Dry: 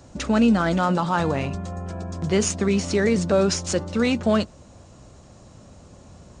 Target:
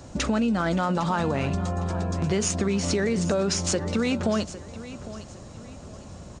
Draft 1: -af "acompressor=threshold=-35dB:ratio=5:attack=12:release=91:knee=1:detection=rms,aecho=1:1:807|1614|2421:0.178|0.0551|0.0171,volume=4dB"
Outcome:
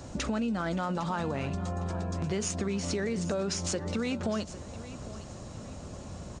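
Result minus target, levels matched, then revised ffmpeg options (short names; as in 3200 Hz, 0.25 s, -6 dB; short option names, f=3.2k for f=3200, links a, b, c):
compressor: peak gain reduction +7 dB
-af "acompressor=threshold=-26.5dB:ratio=5:attack=12:release=91:knee=1:detection=rms,aecho=1:1:807|1614|2421:0.178|0.0551|0.0171,volume=4dB"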